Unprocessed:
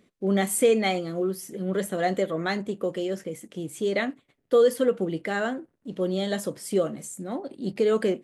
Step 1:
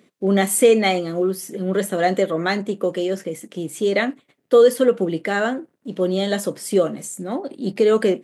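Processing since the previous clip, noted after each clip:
high-pass filter 150 Hz
level +6.5 dB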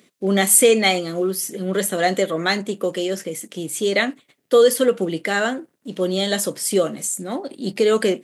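high-shelf EQ 2,300 Hz +10 dB
level −1.5 dB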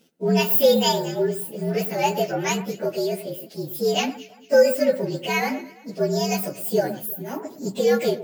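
partials spread apart or drawn together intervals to 117%
delay that swaps between a low-pass and a high-pass 114 ms, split 2,100 Hz, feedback 54%, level −13.5 dB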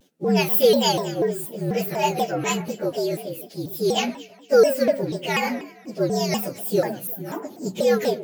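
pitch modulation by a square or saw wave saw down 4.1 Hz, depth 250 cents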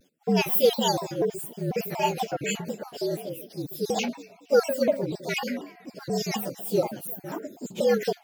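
time-frequency cells dropped at random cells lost 25%
level −3 dB

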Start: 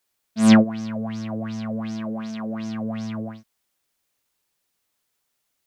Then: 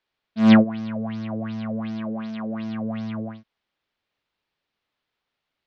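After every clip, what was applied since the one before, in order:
low-pass filter 4,000 Hz 24 dB per octave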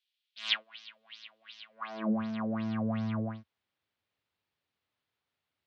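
high-pass filter sweep 3,200 Hz → 85 Hz, 0:01.68–0:02.24
dynamic equaliser 1,100 Hz, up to +5 dB, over −48 dBFS, Q 1
level −5.5 dB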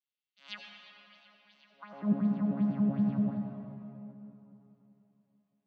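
vocoder with an arpeggio as carrier bare fifth, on C#3, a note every 96 ms
convolution reverb RT60 3.3 s, pre-delay 74 ms, DRR 2 dB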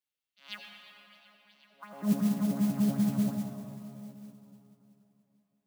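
noise that follows the level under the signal 20 dB
level +1 dB

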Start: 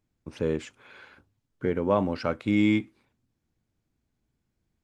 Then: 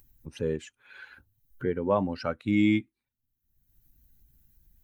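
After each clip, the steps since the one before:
spectral dynamics exaggerated over time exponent 1.5
upward compression, threshold −34 dBFS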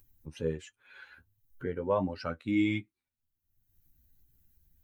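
parametric band 220 Hz −3 dB 0.39 octaves
flanger 1.4 Hz, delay 9.7 ms, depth 3.9 ms, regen +29%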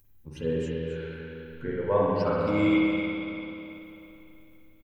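single-tap delay 270 ms −12 dB
spring reverb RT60 3.2 s, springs 41/49 ms, chirp 25 ms, DRR −6 dB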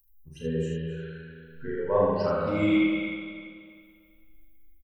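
spectral dynamics exaggerated over time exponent 1.5
on a send: ambience of single reflections 36 ms −3 dB, 79 ms −4 dB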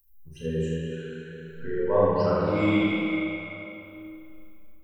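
dense smooth reverb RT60 2.9 s, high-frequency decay 0.75×, DRR 1 dB

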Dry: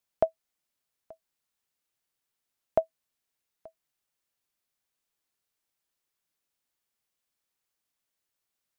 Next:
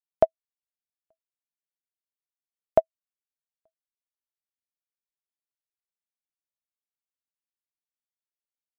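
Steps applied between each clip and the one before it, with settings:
expander for the loud parts 2.5 to 1, over −39 dBFS
level +6 dB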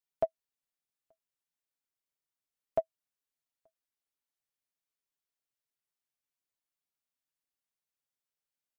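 comb filter 7.3 ms, depth 52%
brickwall limiter −19.5 dBFS, peak gain reduction 13 dB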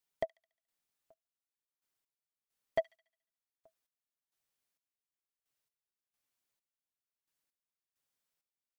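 gate pattern "x..xx..." 66 BPM −12 dB
soft clipping −28.5 dBFS, distortion −10 dB
delay with a high-pass on its return 71 ms, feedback 48%, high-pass 2,200 Hz, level −19 dB
level +4.5 dB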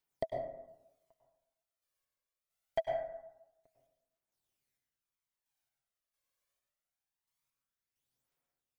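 phase shifter 0.24 Hz, delay 1.9 ms, feedback 57%
dense smooth reverb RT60 0.92 s, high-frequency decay 0.3×, pre-delay 90 ms, DRR 0 dB
level −3 dB

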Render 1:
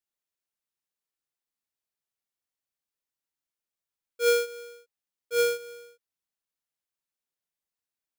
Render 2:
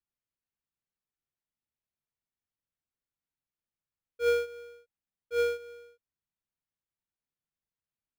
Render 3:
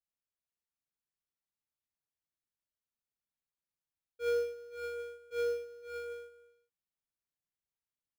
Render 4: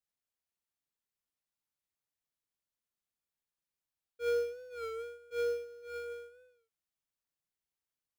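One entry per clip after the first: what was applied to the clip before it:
bass and treble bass +11 dB, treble −12 dB; level −4 dB
multi-tap delay 76/103/509/563/721 ms −9/−9.5/−11/−6.5/−12 dB; level −7.5 dB
wow of a warped record 33 1/3 rpm, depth 100 cents

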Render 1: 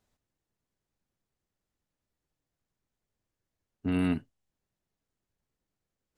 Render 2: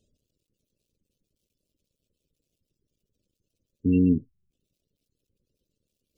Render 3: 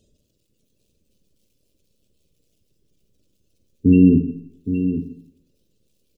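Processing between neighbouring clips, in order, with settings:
log-companded quantiser 8 bits; flat-topped bell 1,200 Hz −14.5 dB; gate on every frequency bin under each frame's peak −20 dB strong; level +7.5 dB
on a send: single-tap delay 818 ms −9.5 dB; on the sum: four-comb reverb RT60 0.69 s, combs from 32 ms, DRR 5.5 dB; level +8.5 dB

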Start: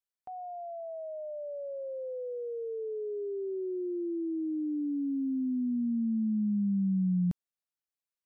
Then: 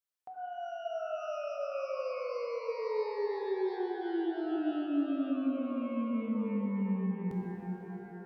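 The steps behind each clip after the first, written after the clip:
low-shelf EQ 140 Hz −11 dB
in parallel at −1 dB: compressor whose output falls as the input rises −36 dBFS
on the sum: reverb with rising layers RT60 3.7 s, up +12 semitones, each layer −8 dB, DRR −1 dB
level −7.5 dB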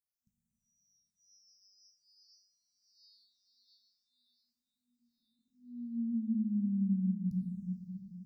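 brick-wall band-stop 240–3,500 Hz
all-pass phaser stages 6, 0.47 Hz, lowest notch 790–4,500 Hz
flat-topped bell 1,700 Hz −11 dB 2.7 octaves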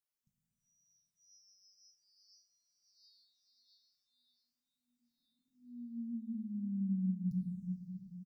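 comb filter 6.9 ms, depth 60%
level −2.5 dB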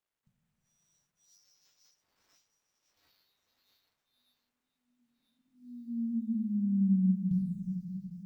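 running median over 9 samples
mains-hum notches 60/120/180/240 Hz
level +9 dB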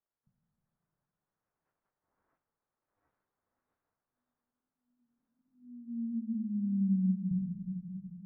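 low-pass filter 1,500 Hz 24 dB per octave
level −2.5 dB

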